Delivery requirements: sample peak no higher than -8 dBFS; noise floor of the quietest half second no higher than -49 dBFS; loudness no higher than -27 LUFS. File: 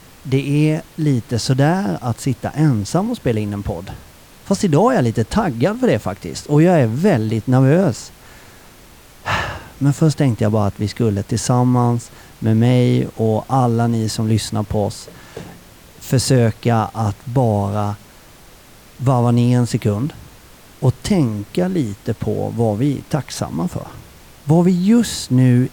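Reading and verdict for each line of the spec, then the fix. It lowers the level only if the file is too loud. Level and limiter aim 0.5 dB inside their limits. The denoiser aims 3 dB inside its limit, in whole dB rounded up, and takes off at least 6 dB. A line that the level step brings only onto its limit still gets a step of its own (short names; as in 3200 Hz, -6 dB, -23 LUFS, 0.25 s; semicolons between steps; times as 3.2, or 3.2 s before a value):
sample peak -4.5 dBFS: fail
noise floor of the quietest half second -44 dBFS: fail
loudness -17.5 LUFS: fail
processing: gain -10 dB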